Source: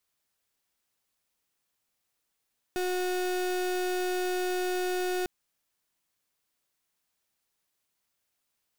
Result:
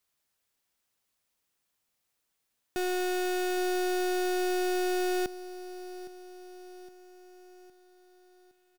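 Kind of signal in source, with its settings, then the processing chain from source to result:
pulse 364 Hz, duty 35% -29.5 dBFS 2.50 s
feedback delay 813 ms, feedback 52%, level -16 dB

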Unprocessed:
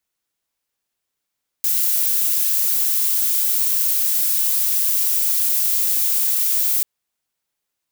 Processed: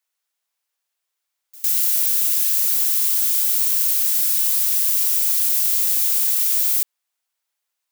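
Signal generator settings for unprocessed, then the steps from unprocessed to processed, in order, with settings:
noise violet, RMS -18.5 dBFS 5.19 s
high-pass 630 Hz 12 dB/octave; pre-echo 105 ms -22.5 dB

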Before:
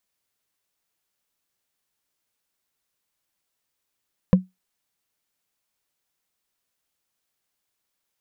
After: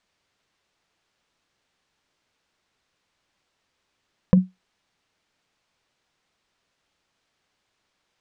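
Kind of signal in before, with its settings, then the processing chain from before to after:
wood hit, lowest mode 185 Hz, decay 0.18 s, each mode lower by 7.5 dB, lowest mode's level -6.5 dB
in parallel at +2 dB: compressor with a negative ratio -24 dBFS, ratio -0.5; on the sum: distance through air 120 m

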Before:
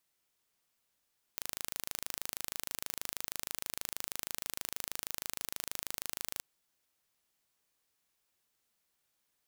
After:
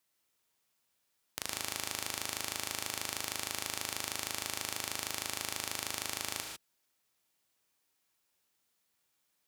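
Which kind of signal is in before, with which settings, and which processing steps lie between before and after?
pulse train 26.3 per s, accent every 0, -9.5 dBFS 5.03 s
tracing distortion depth 0.035 ms; high-pass 66 Hz; gated-style reverb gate 170 ms rising, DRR 3 dB

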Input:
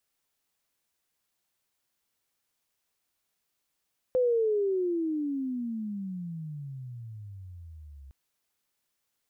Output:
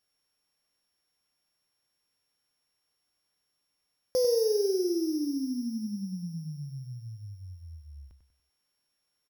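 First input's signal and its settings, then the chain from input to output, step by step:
gliding synth tone sine, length 3.96 s, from 514 Hz, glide -35.5 st, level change -24 dB, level -21 dB
sorted samples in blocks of 8 samples; feedback delay 96 ms, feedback 37%, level -8.5 dB

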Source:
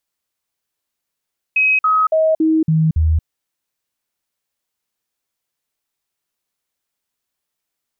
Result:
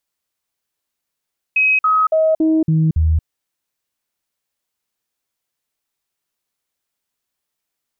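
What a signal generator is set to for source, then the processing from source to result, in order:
stepped sine 2.54 kHz down, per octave 1, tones 6, 0.23 s, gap 0.05 s -11 dBFS
loudspeaker Doppler distortion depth 0.36 ms

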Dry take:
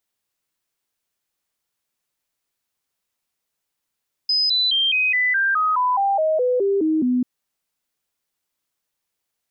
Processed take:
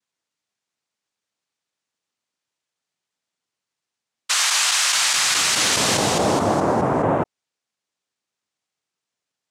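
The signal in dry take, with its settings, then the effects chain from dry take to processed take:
stepped sine 5.03 kHz down, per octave 3, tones 14, 0.21 s, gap 0.00 s -16 dBFS
noise-vocoded speech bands 2

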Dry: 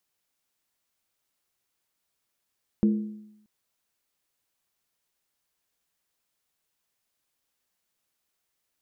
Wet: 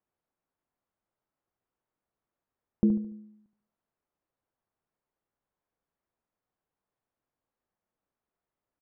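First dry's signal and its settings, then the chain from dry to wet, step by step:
skin hit, lowest mode 212 Hz, decay 0.83 s, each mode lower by 9.5 dB, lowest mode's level -16 dB
low-pass 1.1 kHz 12 dB/octave; on a send: feedback delay 72 ms, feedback 37%, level -10 dB

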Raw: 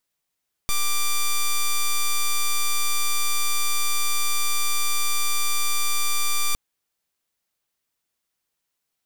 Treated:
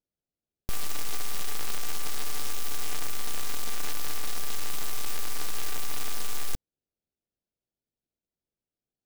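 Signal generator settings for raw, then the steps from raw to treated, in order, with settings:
pulse 1.18 kHz, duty 6% -20 dBFS 5.86 s
local Wiener filter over 41 samples; delay time shaken by noise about 3.9 kHz, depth 0.14 ms

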